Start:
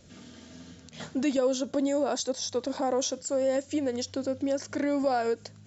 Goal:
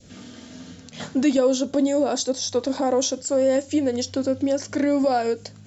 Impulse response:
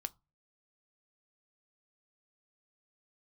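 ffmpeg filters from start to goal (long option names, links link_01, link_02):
-filter_complex "[0:a]adynamicequalizer=threshold=0.00708:dfrequency=1200:dqfactor=0.87:tfrequency=1200:tqfactor=0.87:attack=5:release=100:ratio=0.375:range=2.5:mode=cutabove:tftype=bell[link_01];[1:a]atrim=start_sample=2205[link_02];[link_01][link_02]afir=irnorm=-1:irlink=0,volume=8.5dB"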